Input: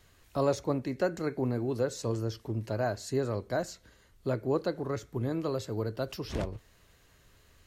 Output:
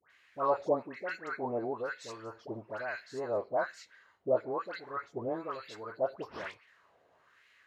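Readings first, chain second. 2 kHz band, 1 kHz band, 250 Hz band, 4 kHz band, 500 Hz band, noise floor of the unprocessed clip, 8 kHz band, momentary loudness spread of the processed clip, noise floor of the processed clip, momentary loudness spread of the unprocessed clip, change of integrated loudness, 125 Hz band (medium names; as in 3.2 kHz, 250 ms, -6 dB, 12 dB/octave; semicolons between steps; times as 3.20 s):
+2.5 dB, +2.5 dB, -9.0 dB, -7.0 dB, -2.0 dB, -63 dBFS, under -10 dB, 13 LU, -68 dBFS, 7 LU, -3.0 dB, -17.5 dB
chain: high-pass 62 Hz; phase dispersion highs, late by 103 ms, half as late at 1.4 kHz; wah-wah 1.1 Hz 630–2200 Hz, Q 2.6; trim +8 dB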